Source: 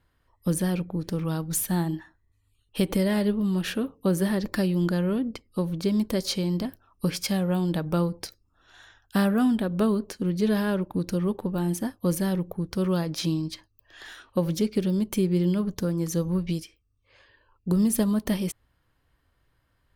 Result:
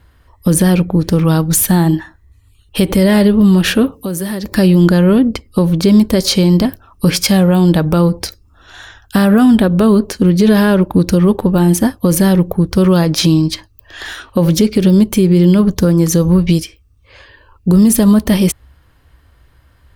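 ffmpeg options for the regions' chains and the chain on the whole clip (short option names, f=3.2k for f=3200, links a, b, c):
-filter_complex "[0:a]asettb=1/sr,asplit=3[a][b][c];[a]atrim=end=3.924[d];[b]atrim=start=3.92:end=4.55,asetpts=PTS-STARTPTS,afade=t=in:d=0.004:c=qsin,afade=t=out:st=0.626:d=0.004:c=qsin,aemphasis=mode=production:type=cd,acompressor=threshold=-40dB:ratio=2.5:attack=3.2:release=140:knee=1:detection=peak,highpass=41[e];[c]atrim=start=4.546[f];[d][e]acrossfade=d=0.004:c1=hsin:c2=qsin[g];[g][f]acrossfade=d=0.004:c1=qsin:c2=hsin,equalizer=f=66:w=2.7:g=11.5,alimiter=level_in=17.5dB:limit=-1dB:release=50:level=0:latency=1,volume=-1dB"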